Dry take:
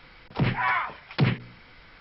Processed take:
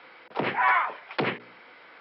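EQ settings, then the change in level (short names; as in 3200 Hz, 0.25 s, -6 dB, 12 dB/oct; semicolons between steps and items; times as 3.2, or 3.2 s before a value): HPF 200 Hz 12 dB/oct; three-band isolator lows -21 dB, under 340 Hz, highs -15 dB, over 4300 Hz; tilt -2 dB/oct; +4.0 dB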